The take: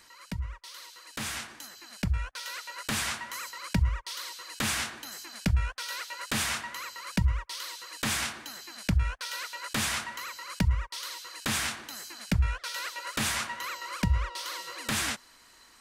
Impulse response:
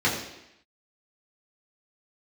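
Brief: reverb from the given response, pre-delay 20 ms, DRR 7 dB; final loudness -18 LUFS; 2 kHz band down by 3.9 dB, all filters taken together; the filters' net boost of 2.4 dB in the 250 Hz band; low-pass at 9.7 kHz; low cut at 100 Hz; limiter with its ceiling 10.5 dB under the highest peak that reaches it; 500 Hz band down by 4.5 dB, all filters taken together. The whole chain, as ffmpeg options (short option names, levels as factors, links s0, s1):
-filter_complex "[0:a]highpass=100,lowpass=9700,equalizer=f=250:t=o:g=5,equalizer=f=500:t=o:g=-7,equalizer=f=2000:t=o:g=-4.5,alimiter=level_in=1.06:limit=0.0631:level=0:latency=1,volume=0.944,asplit=2[s0][s1];[1:a]atrim=start_sample=2205,adelay=20[s2];[s1][s2]afir=irnorm=-1:irlink=0,volume=0.0794[s3];[s0][s3]amix=inputs=2:normalize=0,volume=8.41"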